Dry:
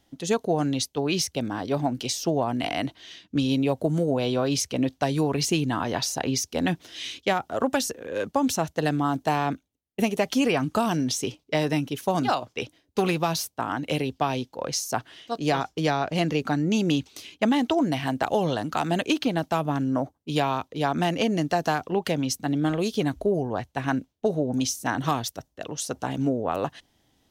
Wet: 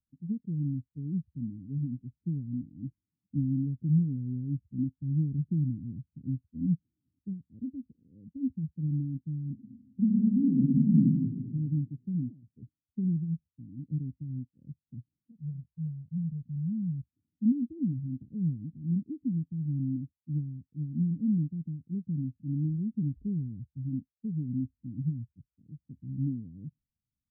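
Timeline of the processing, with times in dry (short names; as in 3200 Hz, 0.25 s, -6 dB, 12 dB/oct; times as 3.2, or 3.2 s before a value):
9.52–11.42 reverb throw, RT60 1.6 s, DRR -4 dB
15.31–17.06 fixed phaser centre 1600 Hz, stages 8
whole clip: inverse Chebyshev low-pass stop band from 1000 Hz, stop band 70 dB; spectral expander 1.5:1; gain +3 dB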